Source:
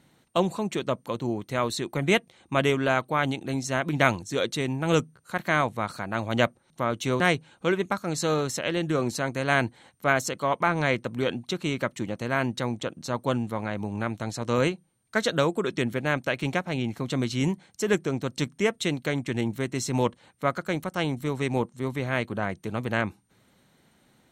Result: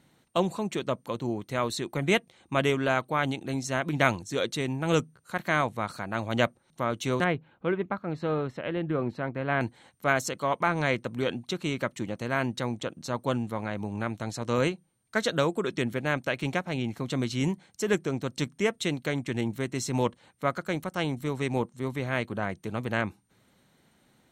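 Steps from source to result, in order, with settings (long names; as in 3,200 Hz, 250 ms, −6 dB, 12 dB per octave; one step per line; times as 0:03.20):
0:07.24–0:09.61: high-frequency loss of the air 480 metres
level −2 dB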